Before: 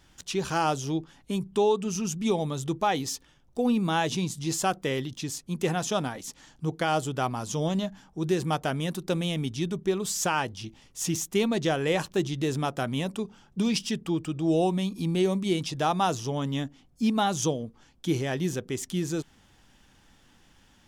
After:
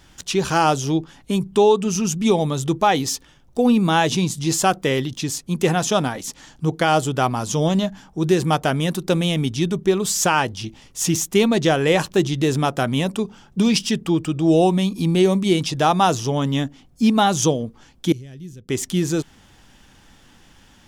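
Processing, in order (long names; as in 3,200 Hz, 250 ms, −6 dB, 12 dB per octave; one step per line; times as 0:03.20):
0:18.12–0:18.69: guitar amp tone stack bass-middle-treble 10-0-1
level +8.5 dB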